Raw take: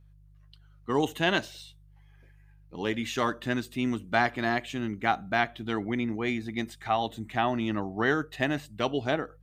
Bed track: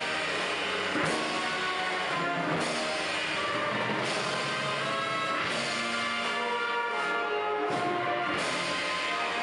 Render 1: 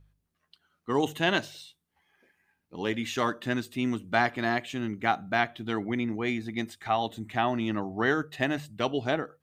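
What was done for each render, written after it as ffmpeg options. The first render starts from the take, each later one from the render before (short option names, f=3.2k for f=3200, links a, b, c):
-af "bandreject=f=50:t=h:w=4,bandreject=f=100:t=h:w=4,bandreject=f=150:t=h:w=4"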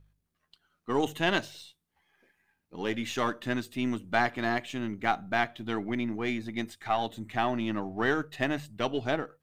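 -af "aeval=exprs='if(lt(val(0),0),0.708*val(0),val(0))':c=same"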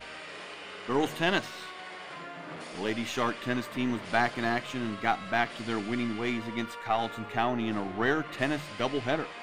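-filter_complex "[1:a]volume=-12.5dB[a];[0:a][a]amix=inputs=2:normalize=0"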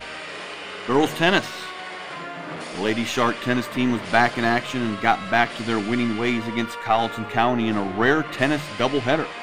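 -af "volume=8.5dB"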